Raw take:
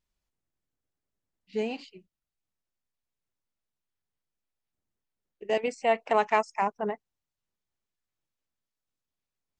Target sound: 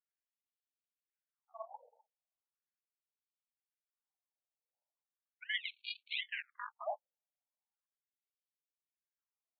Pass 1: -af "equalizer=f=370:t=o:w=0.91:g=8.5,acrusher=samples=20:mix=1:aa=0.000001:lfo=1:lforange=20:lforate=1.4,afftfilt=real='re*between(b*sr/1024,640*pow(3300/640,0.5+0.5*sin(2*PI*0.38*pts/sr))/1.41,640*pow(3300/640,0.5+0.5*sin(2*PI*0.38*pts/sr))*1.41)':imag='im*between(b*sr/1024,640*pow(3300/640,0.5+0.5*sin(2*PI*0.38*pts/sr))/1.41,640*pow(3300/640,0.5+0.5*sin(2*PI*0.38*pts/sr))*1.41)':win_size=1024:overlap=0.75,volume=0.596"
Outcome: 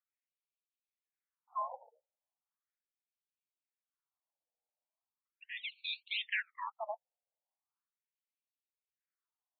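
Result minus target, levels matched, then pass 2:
decimation with a swept rate: distortion -21 dB
-af "equalizer=f=370:t=o:w=0.91:g=8.5,acrusher=samples=67:mix=1:aa=0.000001:lfo=1:lforange=67:lforate=1.4,afftfilt=real='re*between(b*sr/1024,640*pow(3300/640,0.5+0.5*sin(2*PI*0.38*pts/sr))/1.41,640*pow(3300/640,0.5+0.5*sin(2*PI*0.38*pts/sr))*1.41)':imag='im*between(b*sr/1024,640*pow(3300/640,0.5+0.5*sin(2*PI*0.38*pts/sr))/1.41,640*pow(3300/640,0.5+0.5*sin(2*PI*0.38*pts/sr))*1.41)':win_size=1024:overlap=0.75,volume=0.596"

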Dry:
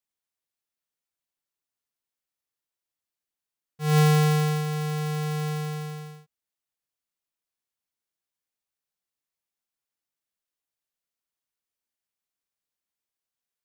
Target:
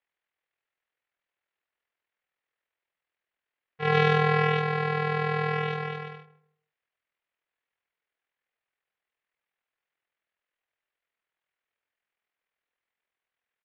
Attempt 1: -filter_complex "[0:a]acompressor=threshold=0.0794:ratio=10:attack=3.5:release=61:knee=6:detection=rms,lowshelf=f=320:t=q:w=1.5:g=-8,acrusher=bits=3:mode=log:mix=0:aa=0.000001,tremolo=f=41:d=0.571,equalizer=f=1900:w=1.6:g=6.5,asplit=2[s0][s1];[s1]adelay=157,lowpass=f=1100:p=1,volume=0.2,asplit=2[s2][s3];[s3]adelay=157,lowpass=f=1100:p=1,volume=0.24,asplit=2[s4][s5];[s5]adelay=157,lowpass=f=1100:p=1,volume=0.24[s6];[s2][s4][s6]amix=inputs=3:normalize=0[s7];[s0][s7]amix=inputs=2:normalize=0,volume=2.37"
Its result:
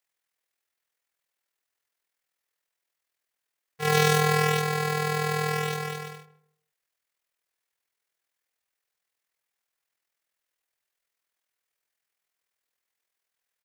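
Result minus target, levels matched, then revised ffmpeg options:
4 kHz band +4.5 dB
-filter_complex "[0:a]acompressor=threshold=0.0794:ratio=10:attack=3.5:release=61:knee=6:detection=rms,lowshelf=f=320:t=q:w=1.5:g=-8,acrusher=bits=3:mode=log:mix=0:aa=0.000001,tremolo=f=41:d=0.571,lowpass=f=3200:w=0.5412,lowpass=f=3200:w=1.3066,equalizer=f=1900:w=1.6:g=6.5,asplit=2[s0][s1];[s1]adelay=157,lowpass=f=1100:p=1,volume=0.2,asplit=2[s2][s3];[s3]adelay=157,lowpass=f=1100:p=1,volume=0.24,asplit=2[s4][s5];[s5]adelay=157,lowpass=f=1100:p=1,volume=0.24[s6];[s2][s4][s6]amix=inputs=3:normalize=0[s7];[s0][s7]amix=inputs=2:normalize=0,volume=2.37"

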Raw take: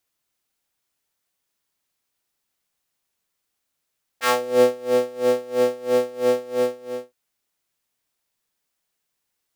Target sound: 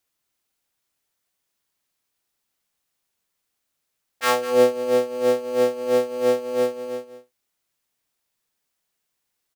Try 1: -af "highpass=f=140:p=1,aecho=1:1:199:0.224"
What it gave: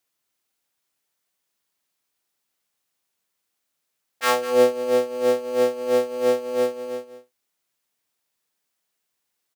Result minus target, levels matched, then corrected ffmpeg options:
125 Hz band -3.0 dB
-af "aecho=1:1:199:0.224"

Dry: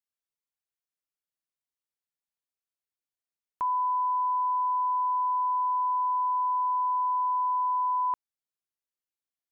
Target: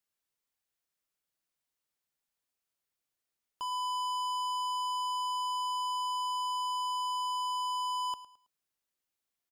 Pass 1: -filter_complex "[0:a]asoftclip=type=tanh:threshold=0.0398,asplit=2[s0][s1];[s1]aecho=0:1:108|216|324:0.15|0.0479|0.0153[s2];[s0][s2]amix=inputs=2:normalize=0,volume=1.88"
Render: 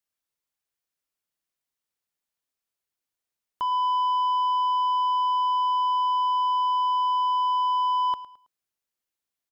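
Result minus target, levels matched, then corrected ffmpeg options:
saturation: distortion -8 dB
-filter_complex "[0:a]asoftclip=type=tanh:threshold=0.01,asplit=2[s0][s1];[s1]aecho=0:1:108|216|324:0.15|0.0479|0.0153[s2];[s0][s2]amix=inputs=2:normalize=0,volume=1.88"

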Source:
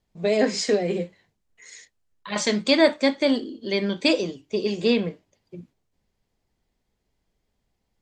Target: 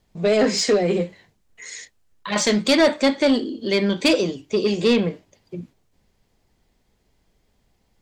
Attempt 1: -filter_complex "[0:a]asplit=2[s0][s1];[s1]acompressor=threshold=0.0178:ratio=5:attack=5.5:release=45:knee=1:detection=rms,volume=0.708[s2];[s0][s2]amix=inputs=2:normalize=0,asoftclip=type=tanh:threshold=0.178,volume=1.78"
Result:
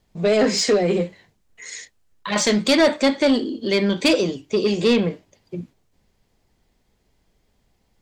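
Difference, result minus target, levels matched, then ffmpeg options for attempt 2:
compression: peak gain reduction -7.5 dB
-filter_complex "[0:a]asplit=2[s0][s1];[s1]acompressor=threshold=0.00596:ratio=5:attack=5.5:release=45:knee=1:detection=rms,volume=0.708[s2];[s0][s2]amix=inputs=2:normalize=0,asoftclip=type=tanh:threshold=0.178,volume=1.78"

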